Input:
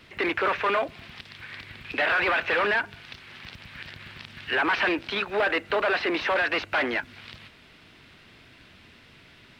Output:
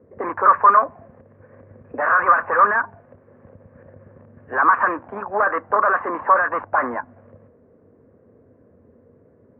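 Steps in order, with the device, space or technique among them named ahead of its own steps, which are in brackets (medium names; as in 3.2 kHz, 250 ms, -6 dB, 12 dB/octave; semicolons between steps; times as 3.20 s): envelope filter bass rig (touch-sensitive low-pass 460–1200 Hz up, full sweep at -21 dBFS; cabinet simulation 71–2100 Hz, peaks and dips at 93 Hz +8 dB, 240 Hz +6 dB, 350 Hz -3 dB, 530 Hz +6 dB, 1.1 kHz +8 dB, 1.7 kHz +7 dB); trim -2.5 dB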